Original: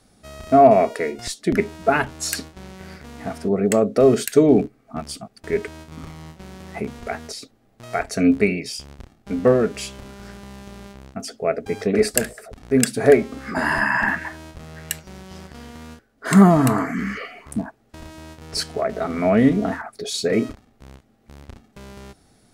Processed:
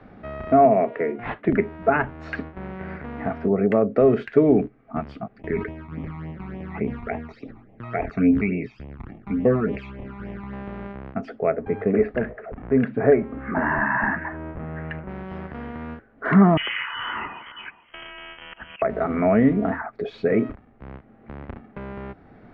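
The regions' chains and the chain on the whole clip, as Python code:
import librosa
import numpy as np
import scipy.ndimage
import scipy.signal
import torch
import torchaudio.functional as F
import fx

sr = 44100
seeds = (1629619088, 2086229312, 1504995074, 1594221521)

y = fx.chain(x, sr, fx.highpass(hz=120.0, slope=24),
    fx.dynamic_eq(hz=1200.0, q=1.3, threshold_db=-29.0, ratio=4.0, max_db=-5),
    fx.resample_linear(factor=6), at=(0.65, 1.49))
y = fx.chain(y, sr, fx.phaser_stages(stages=12, low_hz=500.0, high_hz=1500.0, hz=3.5, feedback_pct=10),
    fx.sustainer(db_per_s=90.0), at=(5.37, 10.53))
y = fx.chain(y, sr, fx.law_mismatch(coded='mu'),
    fx.air_absorb(metres=450.0), at=(11.5, 15.09))
y = fx.chain(y, sr, fx.auto_swell(attack_ms=257.0),
    fx.echo_single(ms=419, db=-19.0),
    fx.freq_invert(carrier_hz=3200), at=(16.57, 18.82))
y = scipy.signal.sosfilt(scipy.signal.butter(4, 2200.0, 'lowpass', fs=sr, output='sos'), y)
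y = fx.band_squash(y, sr, depth_pct=40)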